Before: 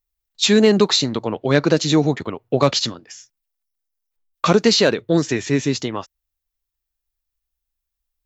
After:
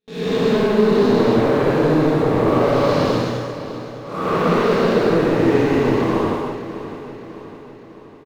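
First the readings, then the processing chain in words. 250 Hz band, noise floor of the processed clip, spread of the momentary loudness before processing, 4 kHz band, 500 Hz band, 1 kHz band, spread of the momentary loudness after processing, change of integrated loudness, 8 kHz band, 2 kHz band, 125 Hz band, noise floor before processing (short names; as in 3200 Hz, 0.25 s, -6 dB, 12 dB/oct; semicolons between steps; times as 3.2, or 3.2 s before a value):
+2.0 dB, -40 dBFS, 10 LU, -10.0 dB, +3.5 dB, +5.5 dB, 15 LU, +0.5 dB, n/a, +0.5 dB, +2.0 dB, -82 dBFS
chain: time blur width 0.421 s; LPF 1200 Hz 12 dB/oct; de-hum 68.79 Hz, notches 3; gate with hold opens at -47 dBFS; tilt +2 dB/oct; compressor 6:1, threshold -34 dBFS, peak gain reduction 14.5 dB; sample leveller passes 3; feedback echo 0.605 s, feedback 52%, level -13 dB; non-linear reverb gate 0.35 s flat, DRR -6 dB; gain +7 dB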